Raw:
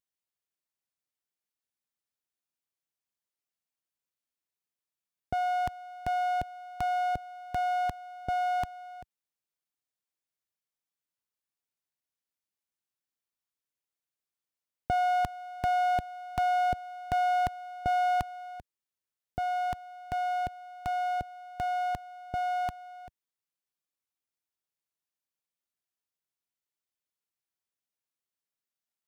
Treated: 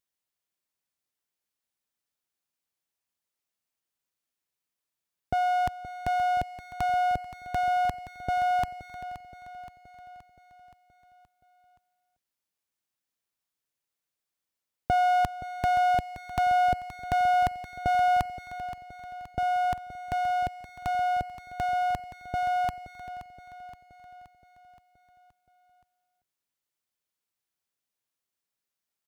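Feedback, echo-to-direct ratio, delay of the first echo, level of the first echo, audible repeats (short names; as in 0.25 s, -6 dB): 57%, -11.5 dB, 0.523 s, -13.0 dB, 5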